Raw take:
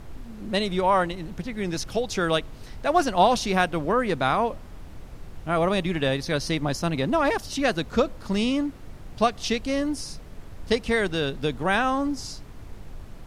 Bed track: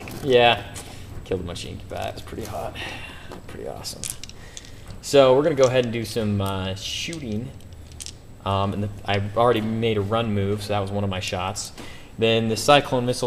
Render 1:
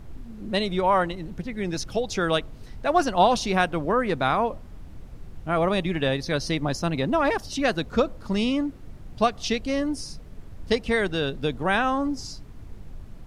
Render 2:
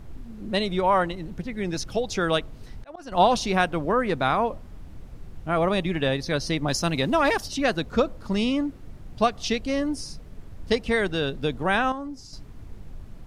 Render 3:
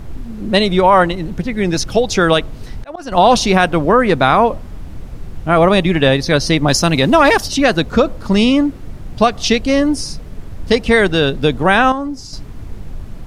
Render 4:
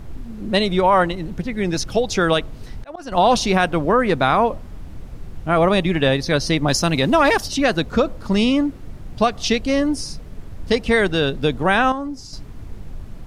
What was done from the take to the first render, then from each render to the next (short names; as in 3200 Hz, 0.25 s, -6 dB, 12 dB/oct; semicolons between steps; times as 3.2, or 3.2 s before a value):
denoiser 6 dB, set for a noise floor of -42 dBFS
2.26–3.12 auto swell 0.532 s; 6.68–7.48 high shelf 2300 Hz +8.5 dB; 11.92–12.33 gain -8.5 dB
maximiser +12 dB
gain -5 dB